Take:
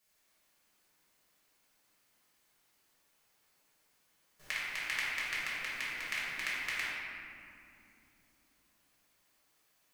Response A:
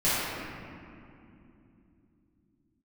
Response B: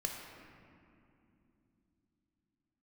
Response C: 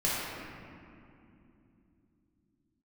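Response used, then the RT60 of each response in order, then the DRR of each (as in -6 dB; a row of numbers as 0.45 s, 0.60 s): C; 2.9 s, 2.8 s, 2.9 s; -14.0 dB, 0.5 dB, -8.5 dB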